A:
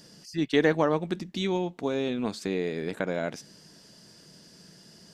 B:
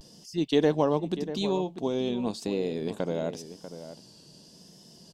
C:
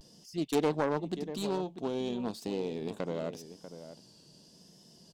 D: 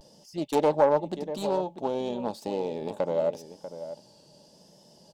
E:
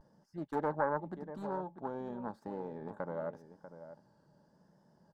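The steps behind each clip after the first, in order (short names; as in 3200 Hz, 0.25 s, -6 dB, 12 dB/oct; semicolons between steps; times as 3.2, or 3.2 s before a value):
vibrato 0.89 Hz 81 cents; band shelf 1700 Hz -10.5 dB 1.1 oct; outdoor echo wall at 110 m, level -12 dB
self-modulated delay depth 0.28 ms; gain -5 dB
small resonant body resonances 590/830 Hz, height 15 dB, ringing for 35 ms
EQ curve 170 Hz 0 dB, 590 Hz -8 dB, 1600 Hz +7 dB, 2600 Hz -20 dB; gain -6 dB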